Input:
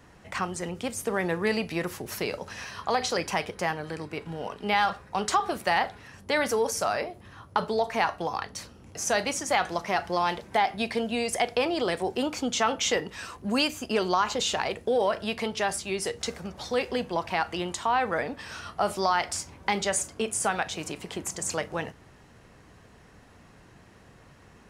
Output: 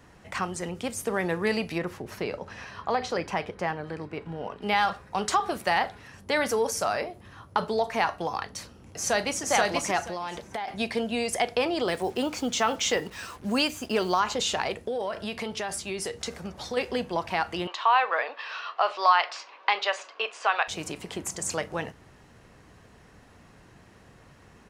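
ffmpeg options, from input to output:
-filter_complex "[0:a]asettb=1/sr,asplit=3[s0][s1][s2];[s0]atrim=end=1.784[s3];[s1]atrim=start=1.78:end=4.62,asetpts=PTS-STARTPTS,afade=t=in:d=0.004:c=qsin,afade=t=out:st=2.836:d=0.004:c=qsin,lowpass=f=2100:p=1[s4];[s2]atrim=start=4.616[s5];[s3][s4]acrossfade=d=0.004:c1=hsin:c2=qsin[s6];[s6][s5]acrossfade=d=0.004:c1=qsin:c2=hsin,asplit=2[s7][s8];[s8]afade=t=in:st=8.55:d=0.01,afade=t=out:st=9.43:d=0.01,aecho=0:1:480|960|1440:0.891251|0.17825|0.03565[s9];[s7][s9]amix=inputs=2:normalize=0,asettb=1/sr,asplit=3[s10][s11][s12];[s10]atrim=end=10.024[s13];[s11]atrim=start=10.02:end=10.68,asetpts=PTS-STARTPTS,afade=t=in:d=0.004:c=qsin,afade=t=out:st=0.656:d=0.004:c=qsin,acompressor=threshold=0.0316:ratio=4:attack=3.2:release=140:knee=1:detection=peak[s14];[s12]atrim=start=10.676[s15];[s13][s14]acrossfade=d=0.004:c1=hsin:c2=qsin[s16];[s16][s15]acrossfade=d=0.004:c1=qsin:c2=hsin,asettb=1/sr,asplit=3[s17][s18][s19];[s17]atrim=end=11.884[s20];[s18]atrim=start=11.88:end=14.2,asetpts=PTS-STARTPTS,afade=t=in:d=0.004:c=qsin,afade=t=out:st=2.316:d=0.004:c=qsin,acrusher=bits=7:mix=0:aa=0.5[s21];[s19]atrim=start=14.196[s22];[s20][s21]acrossfade=d=0.004:c1=hsin:c2=qsin[s23];[s23][s22]acrossfade=d=0.004:c1=qsin:c2=hsin,asettb=1/sr,asplit=3[s24][s25][s26];[s24]atrim=end=14.794[s27];[s25]atrim=start=14.79:end=16.77,asetpts=PTS-STARTPTS,afade=t=in:d=0.004:c=qsin,afade=t=out:st=1.976:d=0.004:c=qsin,acompressor=threshold=0.0398:ratio=3:attack=3.2:release=140:knee=1:detection=peak[s28];[s26]atrim=start=16.766[s29];[s27][s28]acrossfade=d=0.004:c1=hsin:c2=qsin[s30];[s30][s29]acrossfade=d=0.004:c1=qsin:c2=hsin,asettb=1/sr,asplit=3[s31][s32][s33];[s31]atrim=end=17.674[s34];[s32]atrim=start=17.67:end=20.68,asetpts=PTS-STARTPTS,afade=t=in:d=0.004:c=qsin,afade=t=out:st=3.006:d=0.004:c=qsin,highpass=f=490:w=0.5412,highpass=f=490:w=1.3066,equalizer=f=1100:t=q:w=4:g=9,equalizer=f=1700:t=q:w=4:g=3,equalizer=f=2700:t=q:w=4:g=8,equalizer=f=4000:t=q:w=4:g=4,lowpass=f=4600:w=0.5412,lowpass=f=4600:w=1.3066[s35];[s33]atrim=start=20.676[s36];[s34][s35]acrossfade=d=0.004:c1=hsin:c2=qsin[s37];[s37][s36]acrossfade=d=0.004:c1=qsin:c2=hsin"

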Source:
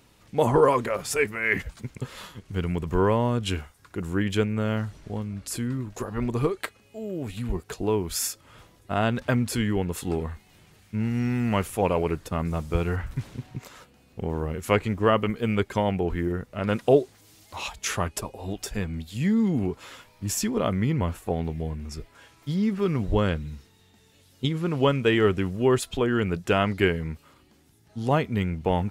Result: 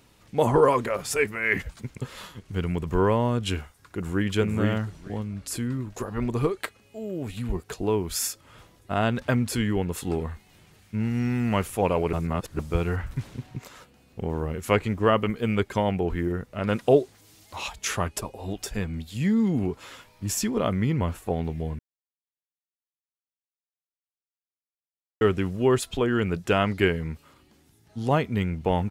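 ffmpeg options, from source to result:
-filter_complex "[0:a]asplit=2[s0][s1];[s1]afade=t=in:st=3.6:d=0.01,afade=t=out:st=4.32:d=0.01,aecho=0:1:450|900|1350:0.794328|0.119149|0.0178724[s2];[s0][s2]amix=inputs=2:normalize=0,asplit=5[s3][s4][s5][s6][s7];[s3]atrim=end=12.132[s8];[s4]atrim=start=12.128:end=12.592,asetpts=PTS-STARTPTS,areverse[s9];[s5]atrim=start=12.588:end=21.79,asetpts=PTS-STARTPTS,afade=t=out:st=9.198:d=0.004:c=hsin[s10];[s6]atrim=start=21.79:end=25.21,asetpts=PTS-STARTPTS,volume=0[s11];[s7]atrim=start=25.21,asetpts=PTS-STARTPTS,afade=t=in:d=0.004:c=hsin[s12];[s8][s9]acrossfade=d=0.004:c1=hsin:c2=hsin[s13];[s10][s11][s12]concat=n=3:v=0:a=1[s14];[s13][s14]acrossfade=d=0.004:c1=hsin:c2=hsin"

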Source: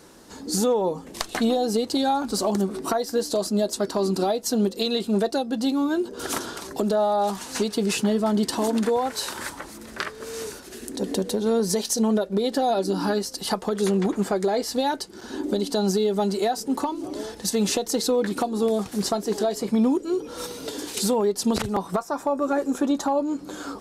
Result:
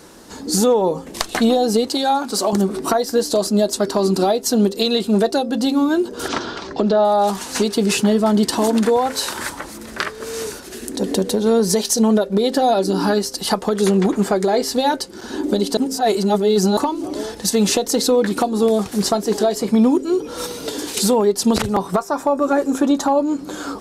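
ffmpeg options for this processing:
-filter_complex "[0:a]asettb=1/sr,asplit=3[s0][s1][s2];[s0]atrim=end=1.894[s3];[s1]atrim=start=1.89:end=2.53,asetpts=PTS-STARTPTS,afade=t=in:d=0.004:c=qsin,afade=t=out:st=0.636:d=0.004:c=qsin,highpass=f=380:p=1[s4];[s2]atrim=start=2.526[s5];[s3][s4]acrossfade=d=0.004:c1=hsin:c2=qsin[s6];[s6][s5]acrossfade=d=0.004:c1=qsin:c2=hsin,asettb=1/sr,asplit=3[s7][s8][s9];[s7]atrim=end=6.284[s10];[s8]atrim=start=6.28:end=7.05,asetpts=PTS-STARTPTS,afade=t=in:d=0.004:c=qsin,afade=t=out:st=0.766:d=0.004:c=qsin,lowpass=f=5100:w=0.5412,lowpass=f=5100:w=1.3066[s11];[s9]atrim=start=7.046[s12];[s10][s11]acrossfade=d=0.004:c1=hsin:c2=qsin[s13];[s13][s12]acrossfade=d=0.004:c1=qsin:c2=hsin,asplit=3[s14][s15][s16];[s14]atrim=end=15.772[s17];[s15]atrim=start=15.768:end=16.772,asetpts=PTS-STARTPTS,areverse[s18];[s16]atrim=start=16.768[s19];[s17][s18]acrossfade=d=0.004:c1=hsin:c2=hsin[s20];[s20][s19]acrossfade=d=0.004:c1=hsin:c2=hsin,bandreject=f=132.7:t=h:w=4,bandreject=f=265.4:t=h:w=4,bandreject=f=398.1:t=h:w=4,bandreject=f=530.8:t=h:w=4,volume=2.11"

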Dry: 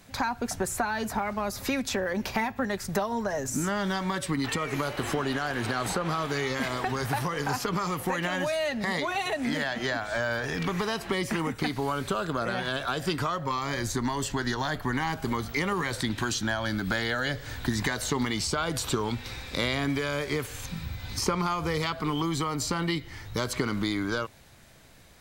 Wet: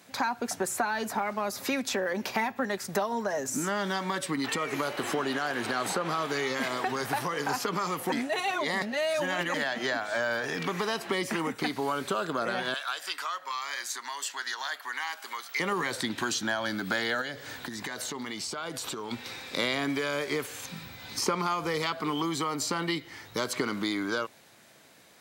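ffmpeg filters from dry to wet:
-filter_complex "[0:a]asettb=1/sr,asplit=3[s0][s1][s2];[s0]atrim=end=12.744[s3];[s1]atrim=start=12.74:end=15.6,asetpts=PTS-STARTPTS,afade=t=in:d=0.004:c=qsin,afade=t=out:st=2.856:d=0.004:c=qsin,highpass=1200[s4];[s2]atrim=start=15.596[s5];[s3][s4]acrossfade=d=0.004:c1=hsin:c2=qsin[s6];[s6][s5]acrossfade=d=0.004:c1=qsin:c2=hsin,asettb=1/sr,asplit=3[s7][s8][s9];[s7]atrim=end=17.214[s10];[s8]atrim=start=17.21:end=19.11,asetpts=PTS-STARTPTS,afade=t=in:d=0.004:c=qsin,afade=t=out:st=1.896:d=0.004:c=qsin,acompressor=threshold=0.0282:ratio=5:attack=3.2:release=140:knee=1:detection=peak[s11];[s9]atrim=start=19.106[s12];[s10][s11]acrossfade=d=0.004:c1=hsin:c2=qsin[s13];[s13][s12]acrossfade=d=0.004:c1=qsin:c2=hsin,asplit=3[s14][s15][s16];[s14]atrim=end=8.122[s17];[s15]atrim=start=8.118:end=9.542,asetpts=PTS-STARTPTS,areverse[s18];[s16]atrim=start=9.538[s19];[s17][s18]acrossfade=d=0.004:c1=hsin:c2=hsin[s20];[s20][s19]acrossfade=d=0.004:c1=hsin:c2=hsin,highpass=230"

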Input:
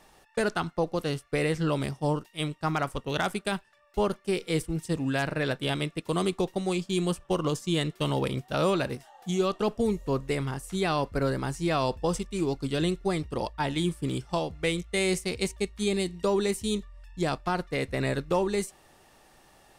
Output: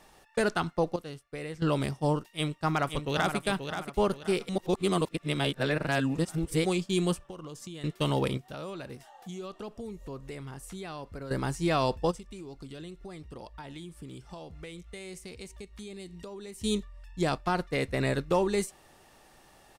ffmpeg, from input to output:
-filter_complex "[0:a]asplit=2[s0][s1];[s1]afade=t=in:st=2.3:d=0.01,afade=t=out:st=3.36:d=0.01,aecho=0:1:530|1060|1590|2120:0.421697|0.147594|0.0516578|0.0180802[s2];[s0][s2]amix=inputs=2:normalize=0,asettb=1/sr,asplit=3[s3][s4][s5];[s3]atrim=end=7.214[s6];[s4]atrim=start=7.21:end=7.84,asetpts=PTS-STARTPTS,afade=t=in:d=0.004:c=qsin,afade=t=out:st=0.626:d=0.004:c=qsin,acompressor=threshold=0.0126:ratio=20:attack=3.2:release=140:knee=1:detection=peak[s7];[s5]atrim=start=7.836[s8];[s6][s7]acrossfade=d=0.004:c1=hsin:c2=qsin[s9];[s9][s8]acrossfade=d=0.004:c1=qsin:c2=hsin,asettb=1/sr,asplit=3[s10][s11][s12];[s10]atrim=end=8.374[s13];[s11]atrim=start=8.37:end=11.31,asetpts=PTS-STARTPTS,afade=t=in:d=0.004:c=qsin,afade=t=out:st=2.936:d=0.004:c=qsin,acompressor=threshold=0.00891:ratio=3:attack=3.2:release=140:knee=1:detection=peak[s14];[s12]atrim=start=11.306[s15];[s13][s14]acrossfade=d=0.004:c1=hsin:c2=qsin[s16];[s16][s15]acrossfade=d=0.004:c1=qsin:c2=hsin,asplit=3[s17][s18][s19];[s17]afade=t=out:st=12.1:d=0.02[s20];[s18]acompressor=threshold=0.00891:ratio=6:attack=3.2:release=140:knee=1:detection=peak,afade=t=in:st=12.1:d=0.02,afade=t=out:st=16.6:d=0.02[s21];[s19]afade=t=in:st=16.6:d=0.02[s22];[s20][s21][s22]amix=inputs=3:normalize=0,asplit=5[s23][s24][s25][s26][s27];[s23]atrim=end=0.962[s28];[s24]atrim=start=0.958:end=1.622,asetpts=PTS-STARTPTS,volume=0.266[s29];[s25]atrim=start=1.618:end=4.492[s30];[s26]atrim=start=4.488:end=6.652,asetpts=PTS-STARTPTS,areverse[s31];[s27]atrim=start=6.648[s32];[s28][s29]acrossfade=d=0.004:c1=hsin:c2=hsin[s33];[s33][s30]acrossfade=d=0.004:c1=hsin:c2=hsin[s34];[s34][s31]acrossfade=d=0.004:c1=hsin:c2=hsin[s35];[s35][s32]acrossfade=d=0.004:c1=hsin:c2=hsin"

